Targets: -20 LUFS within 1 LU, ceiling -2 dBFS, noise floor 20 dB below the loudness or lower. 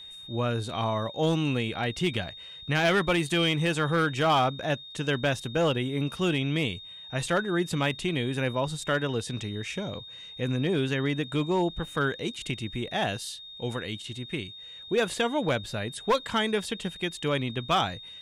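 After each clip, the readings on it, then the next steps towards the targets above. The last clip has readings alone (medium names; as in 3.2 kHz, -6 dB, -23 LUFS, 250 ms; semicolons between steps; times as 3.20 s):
clipped samples 0.5%; clipping level -17.5 dBFS; steady tone 3.7 kHz; tone level -42 dBFS; loudness -28.5 LUFS; peak level -17.5 dBFS; loudness target -20.0 LUFS
-> clip repair -17.5 dBFS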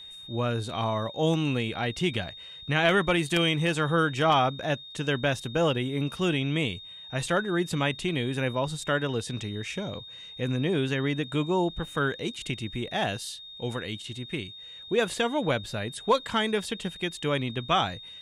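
clipped samples 0.0%; steady tone 3.7 kHz; tone level -42 dBFS
-> band-stop 3.7 kHz, Q 30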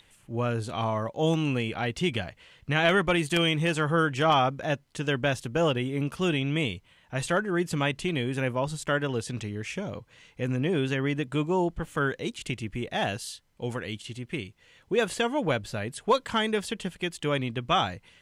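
steady tone not found; loudness -28.0 LUFS; peak level -8.5 dBFS; loudness target -20.0 LUFS
-> trim +8 dB; peak limiter -2 dBFS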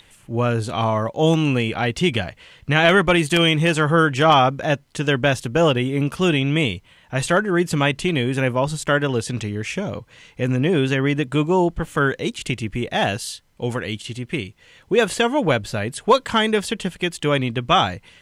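loudness -20.0 LUFS; peak level -2.0 dBFS; noise floor -54 dBFS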